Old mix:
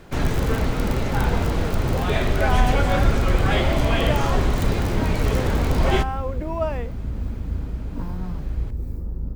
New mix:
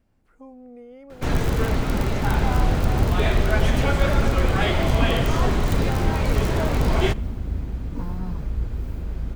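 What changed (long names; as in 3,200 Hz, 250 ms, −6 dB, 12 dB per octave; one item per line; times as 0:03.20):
speech −6.5 dB
first sound: entry +1.10 s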